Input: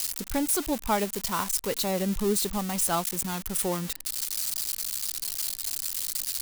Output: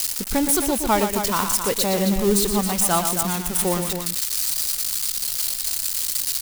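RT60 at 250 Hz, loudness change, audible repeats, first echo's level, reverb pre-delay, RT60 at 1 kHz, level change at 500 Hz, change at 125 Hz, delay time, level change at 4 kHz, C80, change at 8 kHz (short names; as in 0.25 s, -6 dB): none, +7.0 dB, 2, -8.0 dB, none, none, +7.0 dB, +7.0 dB, 0.118 s, +7.0 dB, none, +7.0 dB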